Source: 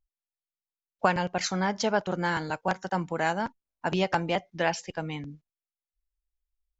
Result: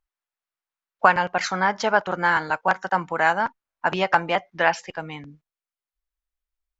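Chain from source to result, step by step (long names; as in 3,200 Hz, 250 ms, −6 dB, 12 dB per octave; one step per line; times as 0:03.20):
parametric band 1,300 Hz +14.5 dB 2.5 octaves, from 0:04.97 +8.5 dB
level −3.5 dB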